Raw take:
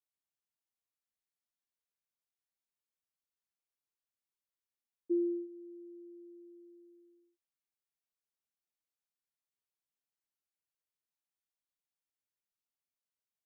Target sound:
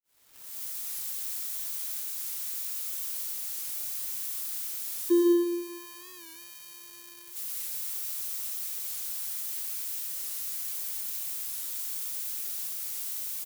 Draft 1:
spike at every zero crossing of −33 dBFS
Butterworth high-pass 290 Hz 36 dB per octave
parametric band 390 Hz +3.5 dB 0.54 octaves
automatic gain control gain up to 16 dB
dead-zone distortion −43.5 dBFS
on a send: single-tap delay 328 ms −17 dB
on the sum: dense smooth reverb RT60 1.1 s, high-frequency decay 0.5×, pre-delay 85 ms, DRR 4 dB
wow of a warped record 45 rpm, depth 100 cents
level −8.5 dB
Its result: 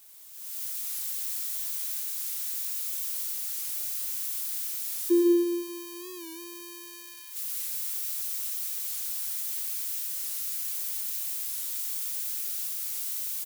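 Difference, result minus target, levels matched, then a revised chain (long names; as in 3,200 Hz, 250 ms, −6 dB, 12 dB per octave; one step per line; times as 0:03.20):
dead-zone distortion: distortion −10 dB
spike at every zero crossing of −33 dBFS
Butterworth high-pass 290 Hz 36 dB per octave
parametric band 390 Hz +3.5 dB 0.54 octaves
automatic gain control gain up to 16 dB
dead-zone distortion −32.5 dBFS
on a send: single-tap delay 328 ms −17 dB
on the sum: dense smooth reverb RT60 1.1 s, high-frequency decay 0.5×, pre-delay 85 ms, DRR 4 dB
wow of a warped record 45 rpm, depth 100 cents
level −8.5 dB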